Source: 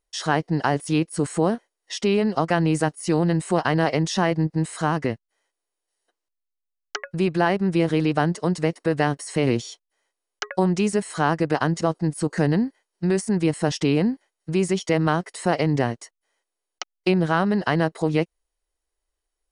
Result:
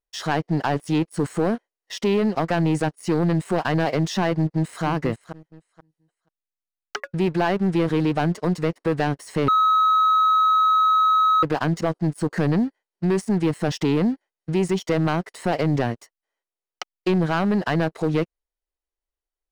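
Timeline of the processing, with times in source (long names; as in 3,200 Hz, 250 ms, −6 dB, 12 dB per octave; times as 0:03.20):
0:04.34–0:04.84: delay throw 480 ms, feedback 25%, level −10.5 dB
0:09.48–0:11.43: beep over 1,280 Hz −14 dBFS
whole clip: high-shelf EQ 5,100 Hz −9.5 dB; leveller curve on the samples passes 2; level −5.5 dB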